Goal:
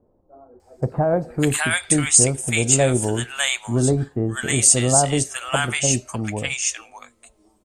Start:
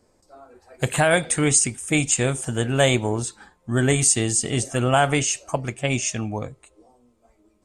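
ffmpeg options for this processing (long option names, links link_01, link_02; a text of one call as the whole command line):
ffmpeg -i in.wav -filter_complex "[0:a]acrossover=split=970[link_01][link_02];[link_02]adelay=600[link_03];[link_01][link_03]amix=inputs=2:normalize=0,crystalizer=i=0.5:c=0,volume=1.5dB" out.wav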